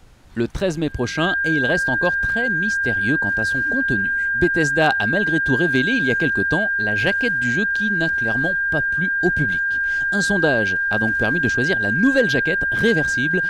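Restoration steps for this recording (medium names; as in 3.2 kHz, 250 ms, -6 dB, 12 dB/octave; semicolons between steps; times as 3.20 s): clip repair -7.5 dBFS; band-stop 1.6 kHz, Q 30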